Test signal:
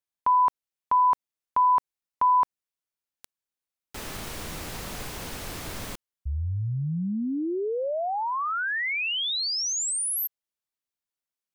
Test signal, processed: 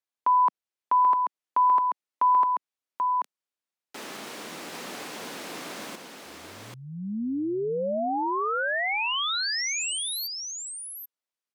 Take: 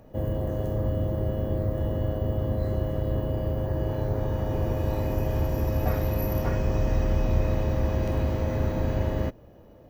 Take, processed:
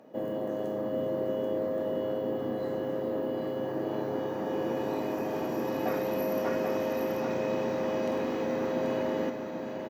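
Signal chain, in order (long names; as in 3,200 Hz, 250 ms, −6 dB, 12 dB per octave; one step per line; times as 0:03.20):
high-pass filter 210 Hz 24 dB per octave
high-shelf EQ 10,000 Hz −11 dB
on a send: single-tap delay 785 ms −5 dB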